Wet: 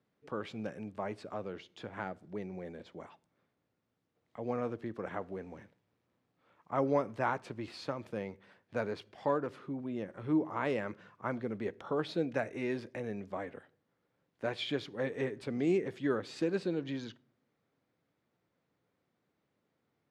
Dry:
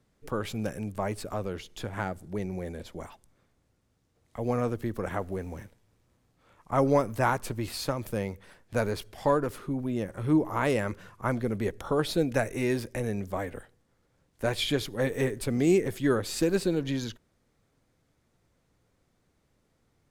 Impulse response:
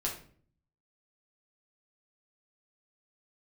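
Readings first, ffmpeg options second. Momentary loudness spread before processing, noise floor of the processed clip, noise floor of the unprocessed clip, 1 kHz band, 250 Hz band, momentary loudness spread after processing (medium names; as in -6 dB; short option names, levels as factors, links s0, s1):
12 LU, -81 dBFS, -72 dBFS, -6.5 dB, -7.0 dB, 13 LU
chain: -filter_complex "[0:a]highpass=160,lowpass=3800,asplit=2[s0][s1];[1:a]atrim=start_sample=2205[s2];[s1][s2]afir=irnorm=-1:irlink=0,volume=0.0794[s3];[s0][s3]amix=inputs=2:normalize=0,volume=0.447"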